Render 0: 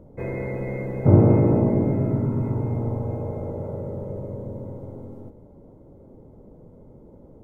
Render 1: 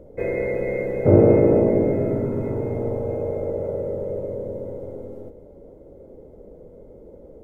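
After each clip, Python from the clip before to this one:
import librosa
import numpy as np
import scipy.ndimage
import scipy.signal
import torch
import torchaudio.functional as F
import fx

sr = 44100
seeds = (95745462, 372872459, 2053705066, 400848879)

y = fx.graphic_eq(x, sr, hz=(125, 250, 500, 1000, 2000), db=(-9, -4, 8, -9, 4))
y = y * 10.0 ** (3.5 / 20.0)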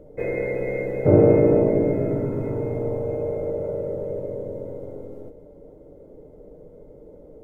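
y = x + 0.35 * np.pad(x, (int(6.7 * sr / 1000.0), 0))[:len(x)]
y = y * 10.0 ** (-1.5 / 20.0)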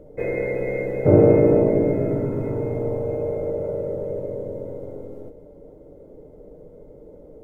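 y = fx.quant_float(x, sr, bits=8)
y = y * 10.0 ** (1.0 / 20.0)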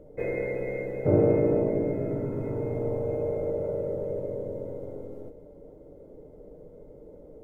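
y = fx.rider(x, sr, range_db=4, speed_s=2.0)
y = y * 10.0 ** (-7.5 / 20.0)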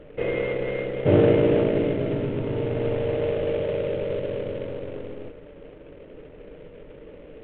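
y = fx.cvsd(x, sr, bps=16000)
y = y * 10.0 ** (4.5 / 20.0)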